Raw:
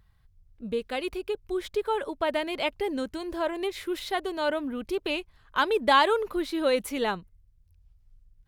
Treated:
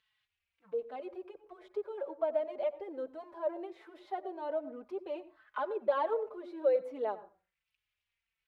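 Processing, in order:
mu-law and A-law mismatch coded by mu
envelope filter 610–3,100 Hz, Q 3.1, down, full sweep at −28 dBFS
convolution reverb RT60 0.35 s, pre-delay 82 ms, DRR 16 dB
barber-pole flanger 4.1 ms −1.3 Hz

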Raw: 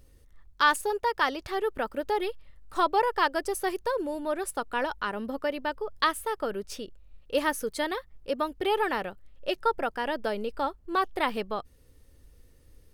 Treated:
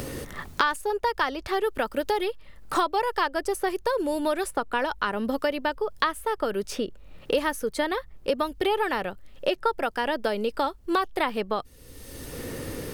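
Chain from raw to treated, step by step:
multiband upward and downward compressor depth 100%
level +2 dB

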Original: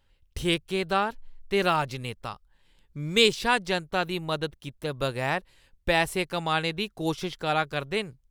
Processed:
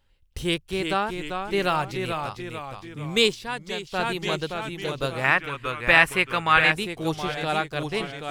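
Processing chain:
delay with pitch and tempo change per echo 338 ms, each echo −1 semitone, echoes 3, each echo −6 dB
0:03.26–0:04.01: duck −8 dB, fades 0.16 s
0:05.24–0:06.72: flat-topped bell 1,700 Hz +10.5 dB

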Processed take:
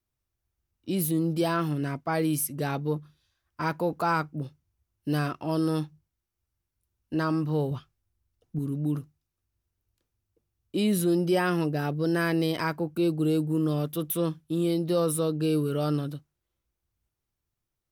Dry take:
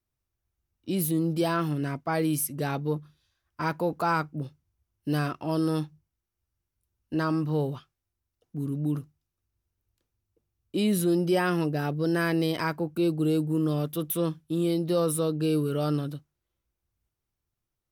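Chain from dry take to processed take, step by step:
0:07.71–0:08.59: low-shelf EQ 170 Hz +9.5 dB

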